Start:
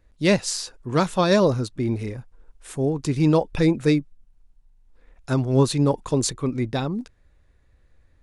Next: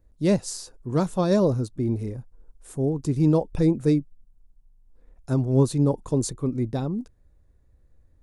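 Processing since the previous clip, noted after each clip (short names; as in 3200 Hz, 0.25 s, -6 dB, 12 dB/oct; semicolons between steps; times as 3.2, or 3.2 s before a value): bell 2500 Hz -14 dB 2.7 oct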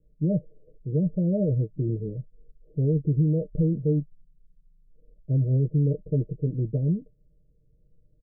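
comb 6.3 ms, depth 68%; limiter -15.5 dBFS, peak gain reduction 9.5 dB; rippled Chebyshev low-pass 620 Hz, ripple 9 dB; gain +3 dB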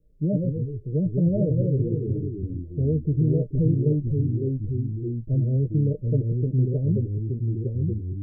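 echoes that change speed 84 ms, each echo -2 st, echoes 3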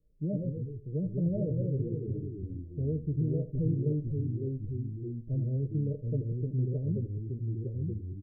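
echo 80 ms -15 dB; gain -8.5 dB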